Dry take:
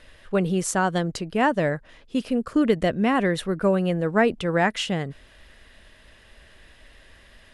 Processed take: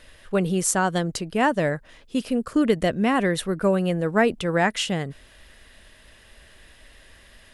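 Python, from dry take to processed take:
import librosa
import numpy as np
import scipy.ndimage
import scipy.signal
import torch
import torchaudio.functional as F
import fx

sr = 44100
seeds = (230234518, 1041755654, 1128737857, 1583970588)

y = fx.high_shelf(x, sr, hz=7400.0, db=10.0)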